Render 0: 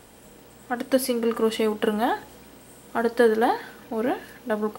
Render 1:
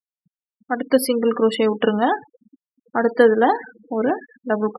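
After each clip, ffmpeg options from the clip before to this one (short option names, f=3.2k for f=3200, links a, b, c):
-af "afftfilt=real='re*gte(hypot(re,im),0.0316)':imag='im*gte(hypot(re,im),0.0316)':win_size=1024:overlap=0.75,volume=5dB"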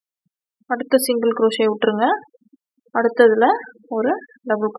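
-af "bass=f=250:g=-6,treble=f=4k:g=1,volume=2dB"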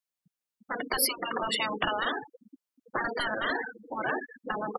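-af "apsyclip=7dB,afftfilt=real='re*lt(hypot(re,im),0.631)':imag='im*lt(hypot(re,im),0.631)':win_size=1024:overlap=0.75,volume=-7dB"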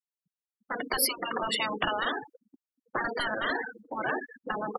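-af "agate=range=-13dB:threshold=-49dB:ratio=16:detection=peak"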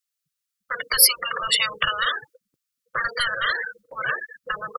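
-af "firequalizer=gain_entry='entry(140,0);entry(250,-29);entry(510,-1);entry(780,-20);entry(1200,4);entry(1600,3);entry(4700,8)':delay=0.05:min_phase=1,volume=4.5dB"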